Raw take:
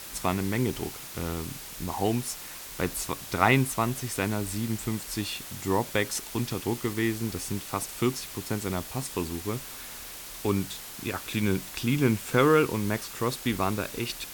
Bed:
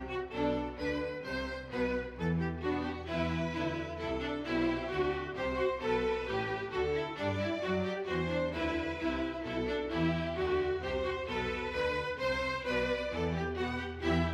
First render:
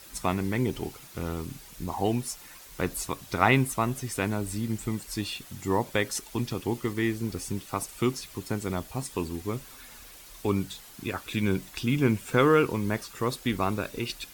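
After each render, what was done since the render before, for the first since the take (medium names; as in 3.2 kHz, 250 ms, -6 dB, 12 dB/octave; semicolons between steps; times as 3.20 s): noise reduction 9 dB, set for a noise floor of -42 dBFS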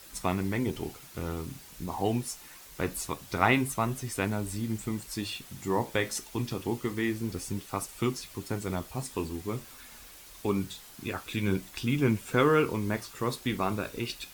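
flange 0.25 Hz, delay 9.6 ms, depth 7.2 ms, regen -65%; in parallel at -10.5 dB: word length cut 8-bit, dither triangular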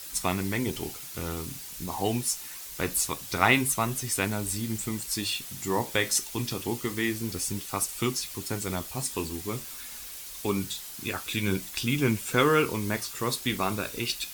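treble shelf 2.5 kHz +10.5 dB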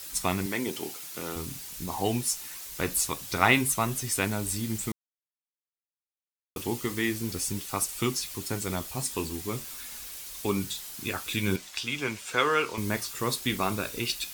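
0.46–1.36 s: high-pass 220 Hz; 4.92–6.56 s: mute; 11.56–12.78 s: three-band isolator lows -13 dB, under 460 Hz, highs -13 dB, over 7.9 kHz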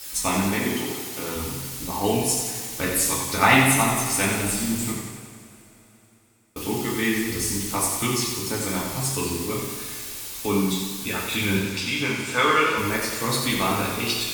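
two-slope reverb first 0.42 s, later 3.8 s, from -22 dB, DRR -3.5 dB; modulated delay 90 ms, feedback 63%, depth 58 cents, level -6 dB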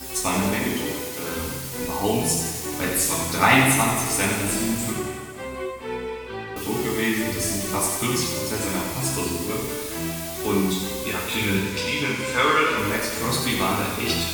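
add bed +1 dB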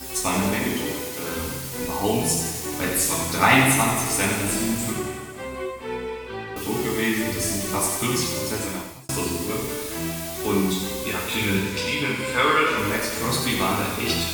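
8.52–9.09 s: fade out; 11.95–12.67 s: peaking EQ 6.1 kHz -10 dB 0.23 oct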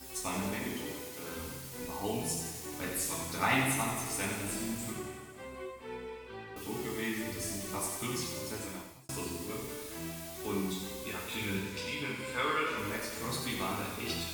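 trim -12.5 dB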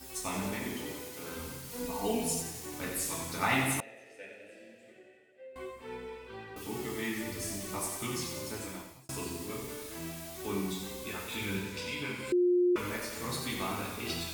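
1.69–2.42 s: comb 4.3 ms, depth 85%; 3.80–5.56 s: vowel filter e; 12.32–12.76 s: bleep 356 Hz -22.5 dBFS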